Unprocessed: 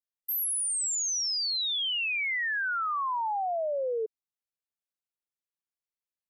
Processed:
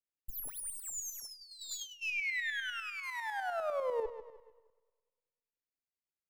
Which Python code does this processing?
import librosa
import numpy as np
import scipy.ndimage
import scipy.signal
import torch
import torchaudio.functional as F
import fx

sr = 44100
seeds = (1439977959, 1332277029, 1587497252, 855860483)

y = fx.lower_of_two(x, sr, delay_ms=0.42)
y = fx.high_shelf(y, sr, hz=3100.0, db=-9.0)
y = fx.echo_feedback(y, sr, ms=153, feedback_pct=39, wet_db=-11.5)
y = fx.rev_schroeder(y, sr, rt60_s=1.5, comb_ms=38, drr_db=18.0)
y = fx.tremolo_shape(y, sr, shape='saw_up', hz=10.0, depth_pct=55)
y = fx.over_compress(y, sr, threshold_db=-47.0, ratio=-0.5, at=(1.25, 2.01), fade=0.02)
y = fx.peak_eq(y, sr, hz=12000.0, db=12.5, octaves=0.96, at=(3.03, 4.03))